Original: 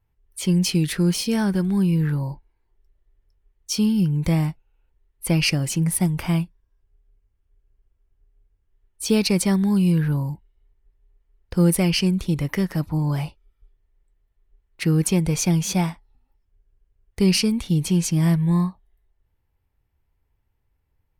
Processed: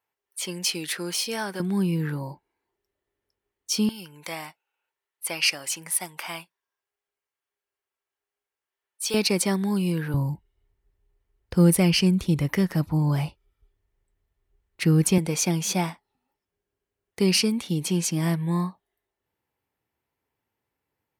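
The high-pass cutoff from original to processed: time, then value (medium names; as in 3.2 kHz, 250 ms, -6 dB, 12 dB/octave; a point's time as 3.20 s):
530 Hz
from 1.60 s 220 Hz
from 3.89 s 790 Hz
from 9.14 s 260 Hz
from 10.14 s 60 Hz
from 15.18 s 230 Hz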